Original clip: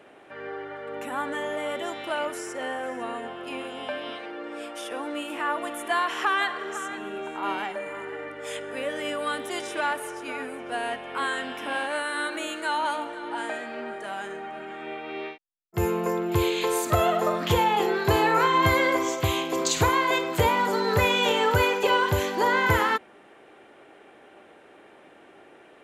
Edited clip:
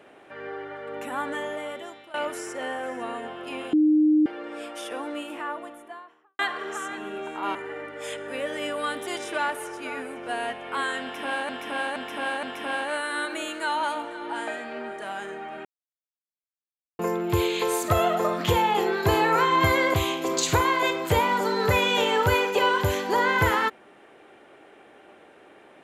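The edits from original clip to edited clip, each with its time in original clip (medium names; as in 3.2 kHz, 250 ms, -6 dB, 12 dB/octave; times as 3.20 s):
1.35–2.14 s: fade out, to -19.5 dB
3.73–4.26 s: bleep 306 Hz -15.5 dBFS
4.88–6.39 s: studio fade out
7.55–7.98 s: delete
11.45–11.92 s: loop, 4 plays
14.67–16.01 s: mute
18.96–19.22 s: delete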